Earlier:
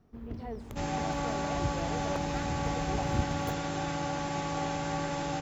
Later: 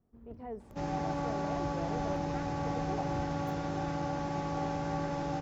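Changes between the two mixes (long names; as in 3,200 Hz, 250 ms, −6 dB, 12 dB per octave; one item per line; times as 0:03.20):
first sound −11.0 dB
second sound: add Chebyshev low-pass filter 5,600 Hz, order 3
master: add parametric band 3,400 Hz −8.5 dB 2.3 octaves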